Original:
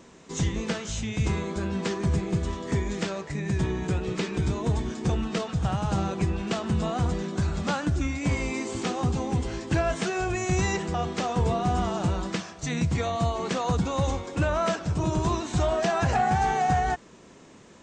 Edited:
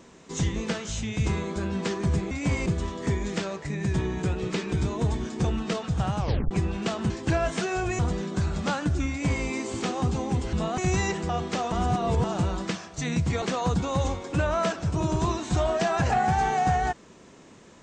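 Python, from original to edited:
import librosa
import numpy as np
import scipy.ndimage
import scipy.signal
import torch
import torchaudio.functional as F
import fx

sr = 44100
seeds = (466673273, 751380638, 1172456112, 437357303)

y = fx.edit(x, sr, fx.tape_stop(start_s=5.84, length_s=0.32),
    fx.swap(start_s=6.75, length_s=0.25, other_s=9.54, other_length_s=0.89),
    fx.duplicate(start_s=8.11, length_s=0.35, to_s=2.31),
    fx.reverse_span(start_s=11.37, length_s=0.52),
    fx.cut(start_s=13.07, length_s=0.38), tone=tone)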